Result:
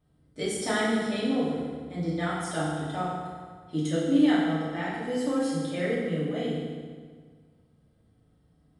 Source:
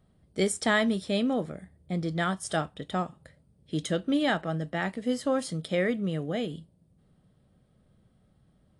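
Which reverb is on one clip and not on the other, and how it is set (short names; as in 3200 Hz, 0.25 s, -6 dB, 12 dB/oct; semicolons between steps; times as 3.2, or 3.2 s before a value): FDN reverb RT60 1.7 s, low-frequency decay 1.1×, high-frequency decay 0.8×, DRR -8.5 dB; gain -9.5 dB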